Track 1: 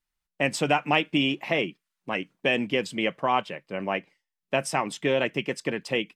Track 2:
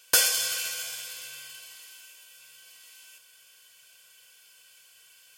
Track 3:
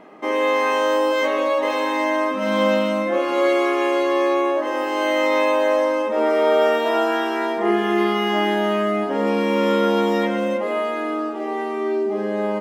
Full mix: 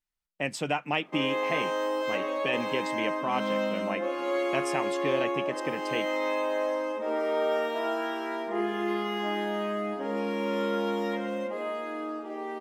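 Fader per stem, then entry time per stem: -6.0 dB, off, -10.5 dB; 0.00 s, off, 0.90 s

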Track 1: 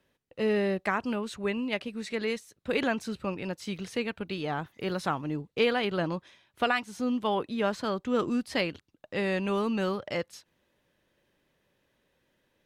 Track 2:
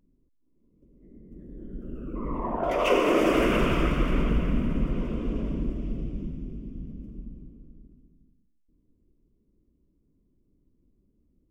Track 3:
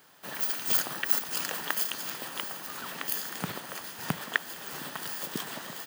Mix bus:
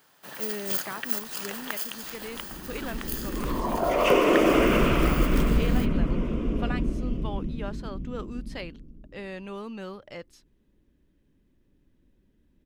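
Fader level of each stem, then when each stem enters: -9.0, +2.0, -3.0 dB; 0.00, 1.20, 0.00 s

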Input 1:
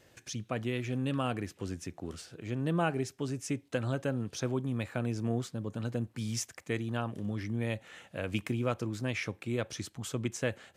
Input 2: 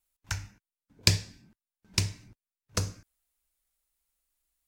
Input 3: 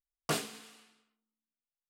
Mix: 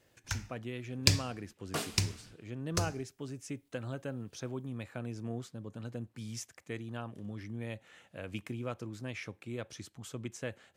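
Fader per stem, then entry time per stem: -7.0, -3.0, -3.5 dB; 0.00, 0.00, 1.45 s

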